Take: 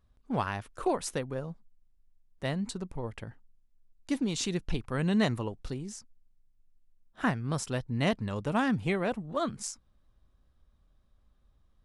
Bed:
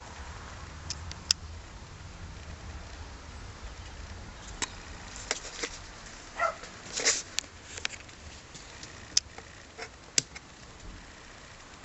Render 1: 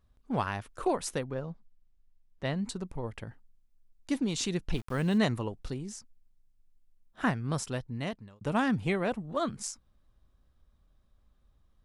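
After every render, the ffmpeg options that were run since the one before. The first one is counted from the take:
-filter_complex "[0:a]asettb=1/sr,asplit=3[s0][s1][s2];[s0]atrim=end=1.244[s3];[s1]atrim=start=1.24:end=2.56,asetpts=PTS-STARTPTS,afade=t=in:d=0.004:c=qsin,afade=t=out:st=1.316:d=0.004:c=qsin,lowpass=5300[s4];[s2]atrim=start=2.556[s5];[s3][s4]acrossfade=d=0.004:c1=hsin:c2=qsin[s6];[s6][s5]acrossfade=d=0.004:c1=qsin:c2=hsin,asplit=3[s7][s8][s9];[s7]afade=t=out:st=4.72:d=0.02[s10];[s8]aeval=exprs='val(0)*gte(abs(val(0)),0.00562)':c=same,afade=t=in:st=4.72:d=0.02,afade=t=out:st=5.17:d=0.02[s11];[s9]afade=t=in:st=5.17:d=0.02[s12];[s10][s11][s12]amix=inputs=3:normalize=0,asplit=2[s13][s14];[s13]atrim=end=8.41,asetpts=PTS-STARTPTS,afade=t=out:st=7.58:d=0.83[s15];[s14]atrim=start=8.41,asetpts=PTS-STARTPTS,afade=t=in:d=0.004:c=hsin[s16];[s15][s16]concat=n=2:v=0:a=1"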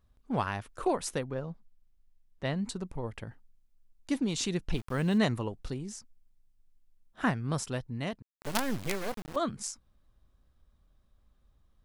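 -filter_complex "[0:a]asettb=1/sr,asplit=3[s0][s1][s2];[s0]atrim=end=8.224[s3];[s1]atrim=start=8.22:end=9.36,asetpts=PTS-STARTPTS,afade=t=in:d=0.004:c=qsin,afade=t=out:st=1.136:d=0.004:c=qsin,acrusher=bits=4:dc=4:mix=0:aa=0.000001[s4];[s2]atrim=start=9.356[s5];[s3][s4]acrossfade=d=0.004:c1=hsin:c2=qsin[s6];[s6][s5]acrossfade=d=0.004:c1=qsin:c2=hsin"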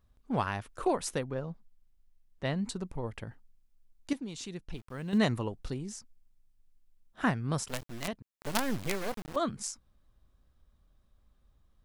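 -filter_complex "[0:a]asettb=1/sr,asplit=3[s0][s1][s2];[s0]atrim=end=7.684[s3];[s1]atrim=start=7.68:end=8.08,asetpts=PTS-STARTPTS,afade=t=in:d=0.004:c=qsin,afade=t=out:st=0.396:d=0.004:c=qsin,acrusher=bits=5:dc=4:mix=0:aa=0.000001[s4];[s2]atrim=start=8.076[s5];[s3][s4]acrossfade=d=0.004:c1=hsin:c2=qsin[s6];[s6][s5]acrossfade=d=0.004:c1=qsin:c2=hsin,asplit=3[s7][s8][s9];[s7]atrim=end=4.132[s10];[s8]atrim=start=4.128:end=5.132,asetpts=PTS-STARTPTS,volume=0.335[s11];[s9]atrim=start=5.128[s12];[s10][s11]acrossfade=d=0.004:c1=hsin:c2=hsin[s13];[s13][s12]acrossfade=d=0.004:c1=hsin:c2=hsin"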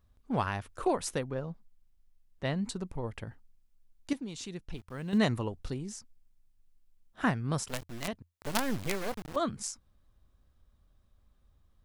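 -af "equalizer=f=86:w=6.5:g=6.5"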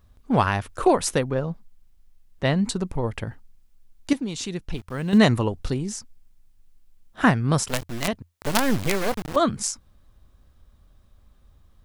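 -af "volume=3.35,alimiter=limit=0.708:level=0:latency=1"

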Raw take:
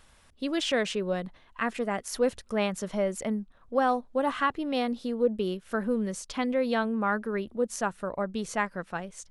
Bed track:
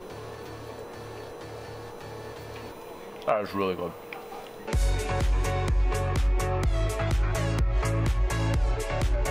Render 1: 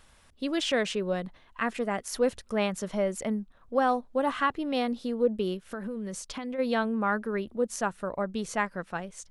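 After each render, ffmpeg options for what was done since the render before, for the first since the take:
-filter_complex "[0:a]asplit=3[s0][s1][s2];[s0]afade=t=out:st=5.59:d=0.02[s3];[s1]acompressor=threshold=0.0282:ratio=12:attack=3.2:release=140:knee=1:detection=peak,afade=t=in:st=5.59:d=0.02,afade=t=out:st=6.58:d=0.02[s4];[s2]afade=t=in:st=6.58:d=0.02[s5];[s3][s4][s5]amix=inputs=3:normalize=0"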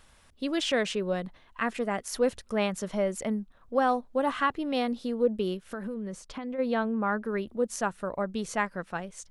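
-filter_complex "[0:a]asettb=1/sr,asplit=3[s0][s1][s2];[s0]atrim=end=5.944[s3];[s1]atrim=start=5.94:end=7.25,asetpts=PTS-STARTPTS,afade=t=in:d=0.004:c=qsin,afade=t=out:st=1.306:d=0.004:c=qsin,highshelf=f=2900:g=-10[s4];[s2]atrim=start=7.246[s5];[s3][s4]acrossfade=d=0.004:c1=hsin:c2=qsin[s6];[s6][s5]acrossfade=d=0.004:c1=qsin:c2=hsin"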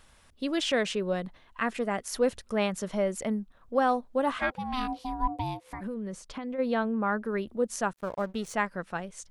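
-filter_complex "[0:a]asplit=3[s0][s1][s2];[s0]afade=t=out:st=4.38:d=0.02[s3];[s1]aeval=exprs='val(0)*sin(2*PI*510*n/s)':c=same,afade=t=in:st=4.38:d=0.02,afade=t=out:st=5.8:d=0.02[s4];[s2]afade=t=in:st=5.8:d=0.02[s5];[s3][s4][s5]amix=inputs=3:normalize=0,asettb=1/sr,asplit=3[s6][s7][s8];[s6]atrim=end=7.934[s9];[s7]atrim=start=7.93:end=8.54,asetpts=PTS-STARTPTS,afade=t=in:d=0.004:c=qsin,afade=t=out:st=0.606:d=0.004:c=qsin,aeval=exprs='sgn(val(0))*max(abs(val(0))-0.00398,0)':c=same[s10];[s8]atrim=start=8.536[s11];[s9][s10]acrossfade=d=0.004:c1=hsin:c2=qsin[s12];[s12][s11]acrossfade=d=0.004:c1=qsin:c2=hsin"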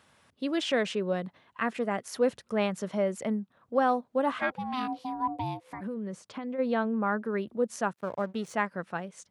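-af "highpass=f=100:w=0.5412,highpass=f=100:w=1.3066,highshelf=f=4300:g=-7"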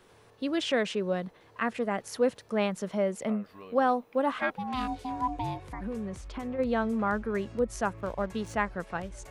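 -filter_complex "[1:a]volume=0.1[s0];[0:a][s0]amix=inputs=2:normalize=0"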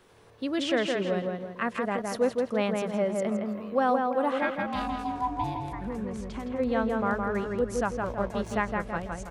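-filter_complex "[0:a]asplit=2[s0][s1];[s1]adelay=164,lowpass=f=2600:p=1,volume=0.708,asplit=2[s2][s3];[s3]adelay=164,lowpass=f=2600:p=1,volume=0.45,asplit=2[s4][s5];[s5]adelay=164,lowpass=f=2600:p=1,volume=0.45,asplit=2[s6][s7];[s7]adelay=164,lowpass=f=2600:p=1,volume=0.45,asplit=2[s8][s9];[s9]adelay=164,lowpass=f=2600:p=1,volume=0.45,asplit=2[s10][s11];[s11]adelay=164,lowpass=f=2600:p=1,volume=0.45[s12];[s0][s2][s4][s6][s8][s10][s12]amix=inputs=7:normalize=0"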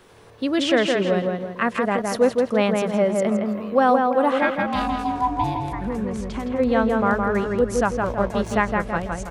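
-af "volume=2.37"

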